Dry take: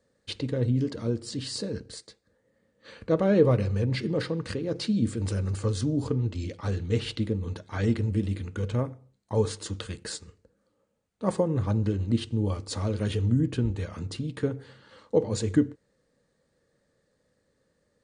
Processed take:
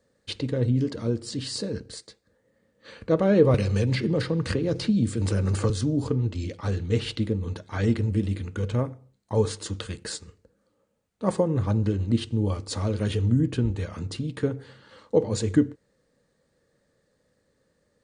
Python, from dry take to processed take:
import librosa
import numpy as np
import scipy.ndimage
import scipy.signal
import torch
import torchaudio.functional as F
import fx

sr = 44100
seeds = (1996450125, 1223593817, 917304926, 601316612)

y = fx.band_squash(x, sr, depth_pct=100, at=(3.54, 5.7))
y = y * 10.0 ** (2.0 / 20.0)